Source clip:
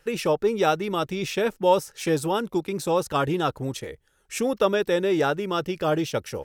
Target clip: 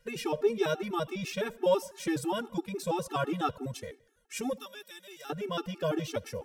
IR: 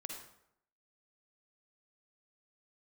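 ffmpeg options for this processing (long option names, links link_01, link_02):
-filter_complex "[0:a]asettb=1/sr,asplit=3[link_01][link_02][link_03];[link_01]atrim=end=4.564[link_04];[link_02]atrim=start=4.56:end=5.3,asetpts=PTS-STARTPTS,afade=type=in:duration=0.004:curve=qsin,afade=type=out:start_time=0.736:duration=0.004:curve=qsin,aderivative[link_05];[link_03]atrim=start=5.296[link_06];[link_04][link_05]acrossfade=duration=0.004:curve1=hsin:curve2=qsin[link_07];[link_07][link_06]acrossfade=duration=0.004:curve1=qsin:curve2=hsin,asplit=2[link_08][link_09];[1:a]atrim=start_sample=2205,adelay=12[link_10];[link_09][link_10]afir=irnorm=-1:irlink=0,volume=-15dB[link_11];[link_08][link_11]amix=inputs=2:normalize=0,afftfilt=real='re*gt(sin(2*PI*6*pts/sr)*(1-2*mod(floor(b*sr/1024/230),2)),0)':imag='im*gt(sin(2*PI*6*pts/sr)*(1-2*mod(floor(b*sr/1024/230),2)),0)':win_size=1024:overlap=0.75,volume=-3.5dB"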